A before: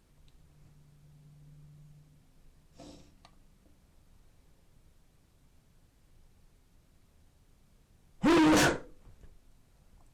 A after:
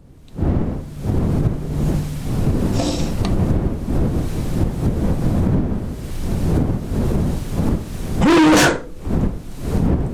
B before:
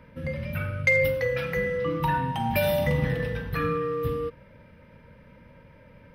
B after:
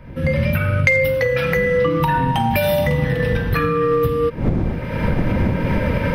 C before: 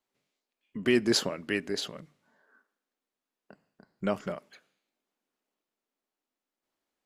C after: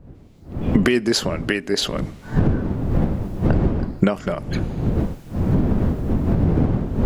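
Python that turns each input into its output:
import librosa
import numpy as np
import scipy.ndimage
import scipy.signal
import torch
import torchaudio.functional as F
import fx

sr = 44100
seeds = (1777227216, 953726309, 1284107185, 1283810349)

y = fx.dmg_wind(x, sr, seeds[0], corner_hz=200.0, level_db=-44.0)
y = fx.recorder_agc(y, sr, target_db=-14.5, rise_db_per_s=37.0, max_gain_db=30)
y = F.gain(torch.from_numpy(y), 5.0).numpy()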